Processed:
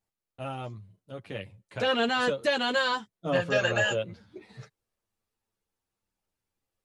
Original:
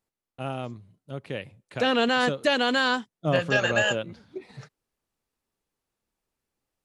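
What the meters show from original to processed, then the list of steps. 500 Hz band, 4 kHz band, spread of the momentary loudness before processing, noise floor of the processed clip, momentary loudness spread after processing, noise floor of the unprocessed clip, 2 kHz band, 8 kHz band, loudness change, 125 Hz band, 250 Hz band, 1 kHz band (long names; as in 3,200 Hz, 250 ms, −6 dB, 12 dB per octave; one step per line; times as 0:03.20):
−2.0 dB, −3.0 dB, 19 LU, below −85 dBFS, 16 LU, below −85 dBFS, −3.0 dB, −3.0 dB, −2.5 dB, −4.0 dB, −5.5 dB, −3.0 dB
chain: multi-voice chorus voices 4, 0.38 Hz, delay 10 ms, depth 1.3 ms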